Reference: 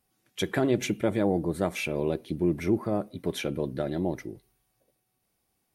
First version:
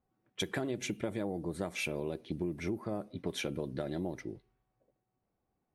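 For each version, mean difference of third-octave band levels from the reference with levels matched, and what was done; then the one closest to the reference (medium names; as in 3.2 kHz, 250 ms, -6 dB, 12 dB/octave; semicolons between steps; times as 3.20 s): 3.0 dB: compression 8:1, threshold -29 dBFS, peak gain reduction 10.5 dB; treble shelf 5.6 kHz +7 dB; level-controlled noise filter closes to 1.1 kHz, open at -28.5 dBFS; trim -2.5 dB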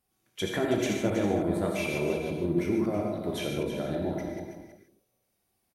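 7.5 dB: chunks repeated in reverse 110 ms, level -5 dB; on a send: delay 323 ms -9.5 dB; on the sum: gated-style reverb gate 180 ms flat, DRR 1 dB; trim -4.5 dB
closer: first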